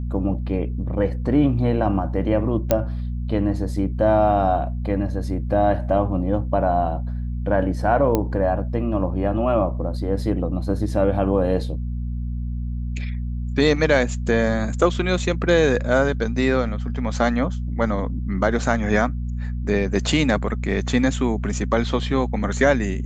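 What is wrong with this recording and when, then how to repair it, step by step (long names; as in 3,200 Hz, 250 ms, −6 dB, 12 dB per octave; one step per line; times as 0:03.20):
mains hum 60 Hz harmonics 4 −26 dBFS
0:02.71: click −4 dBFS
0:08.15: click −7 dBFS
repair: click removal
hum removal 60 Hz, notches 4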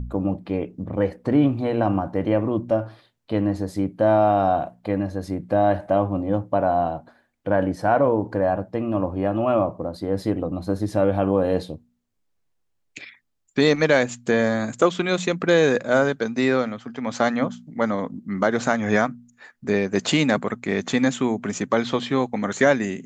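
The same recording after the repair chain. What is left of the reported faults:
none of them is left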